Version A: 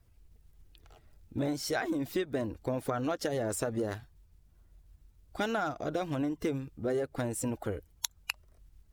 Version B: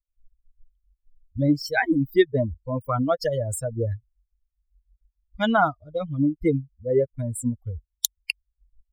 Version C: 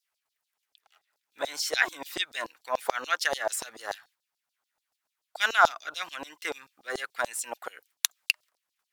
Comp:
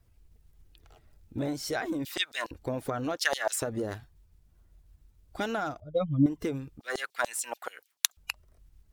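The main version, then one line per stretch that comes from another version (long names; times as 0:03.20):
A
0:02.05–0:02.51: punch in from C
0:03.17–0:03.62: punch in from C
0:05.80–0:06.26: punch in from B
0:06.80–0:08.17: punch in from C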